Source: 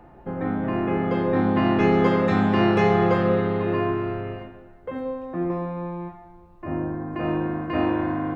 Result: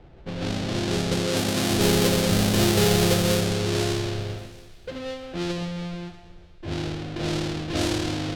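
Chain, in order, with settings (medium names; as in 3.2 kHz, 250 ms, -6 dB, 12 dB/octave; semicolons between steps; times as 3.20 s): square wave that keeps the level; graphic EQ 250/1000/2000/4000 Hz -8/-11/-5/+3 dB; level-controlled noise filter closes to 1.8 kHz, open at -16.5 dBFS; 1.27–1.71 s: high-pass 170 Hz 6 dB/octave; feedback echo behind a high-pass 638 ms, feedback 34%, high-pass 1.5 kHz, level -21.5 dB; trim -1 dB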